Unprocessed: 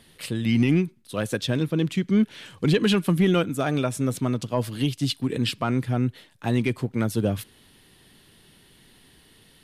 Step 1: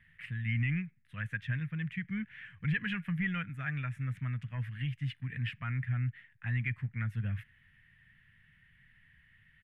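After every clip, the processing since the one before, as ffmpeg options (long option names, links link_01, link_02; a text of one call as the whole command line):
ffmpeg -i in.wav -af "firequalizer=gain_entry='entry(130,0);entry(340,-30);entry(1100,-13);entry(1800,8);entry(4200,-28)':delay=0.05:min_phase=1,volume=-5.5dB" out.wav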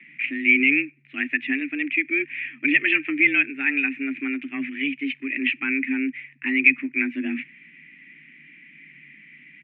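ffmpeg -i in.wav -af "lowpass=frequency=2300:width_type=q:width=9.3,afreqshift=140,volume=6.5dB" out.wav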